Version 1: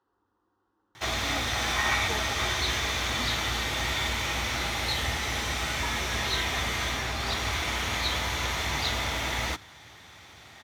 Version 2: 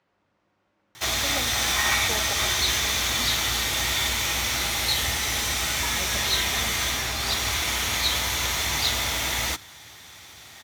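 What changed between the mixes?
speech: remove static phaser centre 610 Hz, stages 6; master: remove low-pass 2.2 kHz 6 dB/octave

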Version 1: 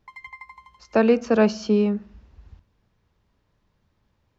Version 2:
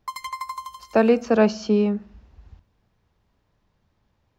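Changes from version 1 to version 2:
speech: add peaking EQ 740 Hz +3.5 dB 0.4 oct; background: remove two resonant band-passes 1.3 kHz, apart 1.3 oct

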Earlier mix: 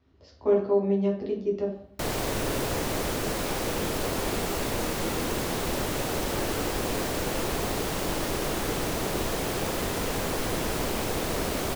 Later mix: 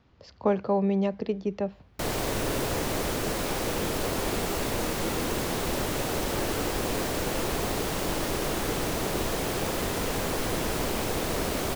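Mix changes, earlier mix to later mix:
speech +8.0 dB; reverb: off

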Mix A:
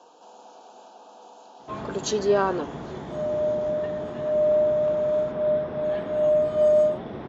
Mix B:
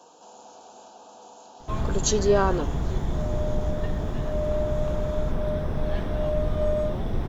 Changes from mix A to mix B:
first sound: remove distance through air 120 m; second sound: add band-pass filter 1.6 kHz, Q 1.1; master: remove band-pass 220–4700 Hz

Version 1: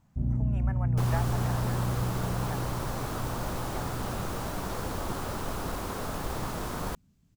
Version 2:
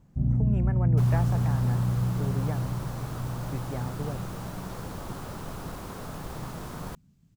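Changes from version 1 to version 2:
speech: remove high-pass 640 Hz 24 dB/octave; second sound -5.5 dB; master: add peaking EQ 150 Hz +7 dB 0.86 oct

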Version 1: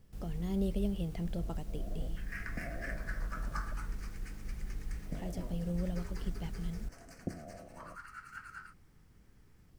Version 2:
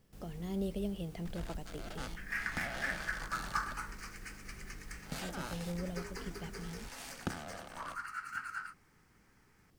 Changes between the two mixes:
speech: add bass shelf 120 Hz -12 dB; first sound: remove steep low-pass 720 Hz 96 dB/octave; second sound +7.0 dB

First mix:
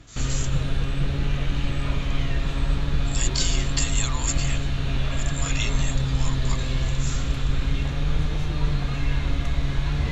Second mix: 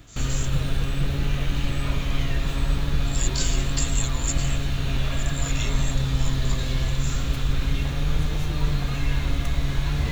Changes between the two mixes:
speech -6.5 dB; master: remove distance through air 63 m

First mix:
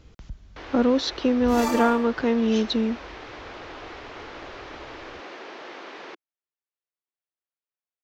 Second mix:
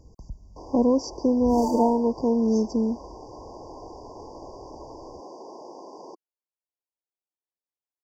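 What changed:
second sound: add treble shelf 6.6 kHz -11 dB; master: add brick-wall FIR band-stop 1.1–4.6 kHz

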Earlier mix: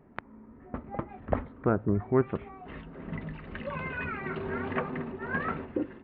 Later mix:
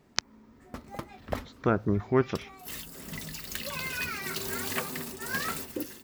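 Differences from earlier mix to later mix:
background -5.0 dB; master: remove Gaussian low-pass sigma 4.6 samples

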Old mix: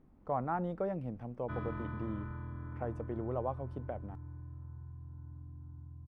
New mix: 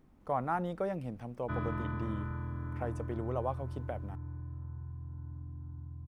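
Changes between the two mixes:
speech: remove low-pass 1.1 kHz 6 dB/octave; background +4.5 dB

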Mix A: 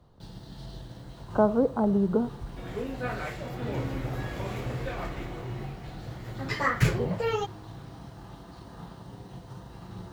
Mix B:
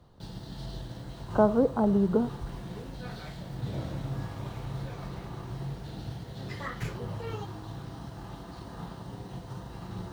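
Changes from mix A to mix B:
first sound +3.0 dB; second sound -12.0 dB

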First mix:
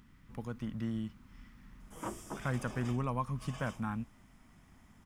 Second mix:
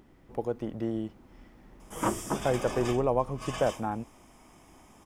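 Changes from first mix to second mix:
speech: add high-order bell 510 Hz +15.5 dB; background +12.0 dB

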